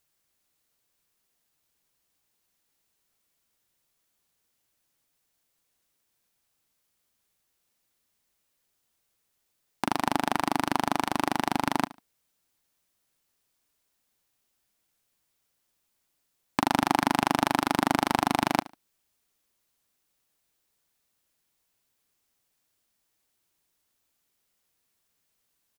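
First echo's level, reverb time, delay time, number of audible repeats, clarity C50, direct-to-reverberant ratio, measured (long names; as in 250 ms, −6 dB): −19.5 dB, no reverb audible, 73 ms, 2, no reverb audible, no reverb audible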